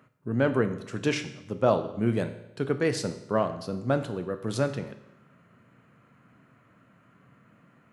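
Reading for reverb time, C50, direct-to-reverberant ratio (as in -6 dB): 0.90 s, 11.5 dB, 7.5 dB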